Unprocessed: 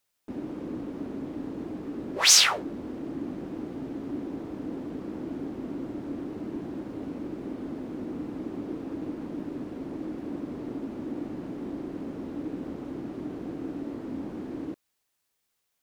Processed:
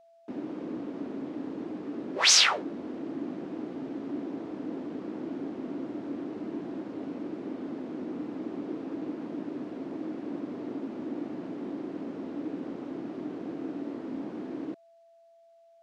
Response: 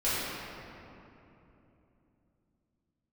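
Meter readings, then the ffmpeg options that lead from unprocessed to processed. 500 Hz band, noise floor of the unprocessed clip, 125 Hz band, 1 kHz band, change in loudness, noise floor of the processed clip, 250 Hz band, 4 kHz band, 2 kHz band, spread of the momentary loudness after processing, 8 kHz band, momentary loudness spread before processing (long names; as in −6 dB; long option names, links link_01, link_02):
0.0 dB, −78 dBFS, −5.5 dB, 0.0 dB, −1.5 dB, −59 dBFS, −1.0 dB, −1.0 dB, 0.0 dB, 2 LU, −4.0 dB, 2 LU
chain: -af "highpass=190,lowpass=5800,aeval=exprs='val(0)+0.00158*sin(2*PI*670*n/s)':channel_layout=same"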